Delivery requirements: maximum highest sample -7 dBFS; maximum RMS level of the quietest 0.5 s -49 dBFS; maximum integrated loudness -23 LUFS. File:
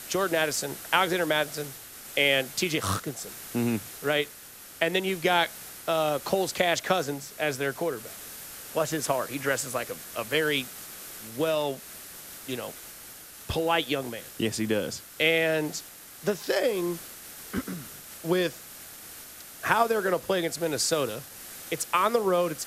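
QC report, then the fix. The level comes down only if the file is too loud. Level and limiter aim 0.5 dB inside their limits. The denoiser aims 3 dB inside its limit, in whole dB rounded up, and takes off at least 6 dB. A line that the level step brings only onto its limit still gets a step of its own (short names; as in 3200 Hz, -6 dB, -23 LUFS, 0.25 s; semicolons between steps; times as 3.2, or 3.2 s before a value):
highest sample -6.0 dBFS: fail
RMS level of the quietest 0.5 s -47 dBFS: fail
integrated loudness -27.5 LUFS: OK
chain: denoiser 6 dB, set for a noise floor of -47 dBFS; limiter -7.5 dBFS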